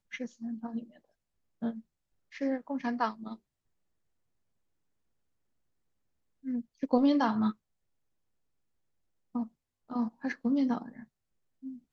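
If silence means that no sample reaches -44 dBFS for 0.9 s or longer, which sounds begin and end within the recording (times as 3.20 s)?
6.45–7.52 s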